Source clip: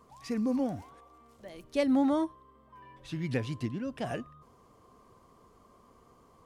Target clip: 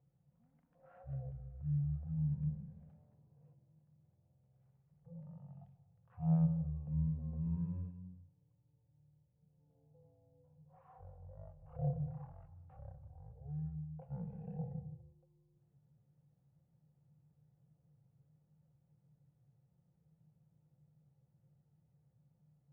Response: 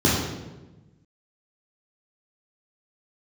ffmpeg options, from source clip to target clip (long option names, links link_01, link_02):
-filter_complex "[0:a]asplit=3[link_01][link_02][link_03];[link_01]bandpass=frequency=530:width_type=q:width=8,volume=0dB[link_04];[link_02]bandpass=frequency=1840:width_type=q:width=8,volume=-6dB[link_05];[link_03]bandpass=frequency=2480:width_type=q:width=8,volume=-9dB[link_06];[link_04][link_05][link_06]amix=inputs=3:normalize=0,asetrate=12524,aresample=44100,asplit=2[link_07][link_08];[1:a]atrim=start_sample=2205,afade=type=out:start_time=0.25:duration=0.01,atrim=end_sample=11466,adelay=135[link_09];[link_08][link_09]afir=irnorm=-1:irlink=0,volume=-33dB[link_10];[link_07][link_10]amix=inputs=2:normalize=0"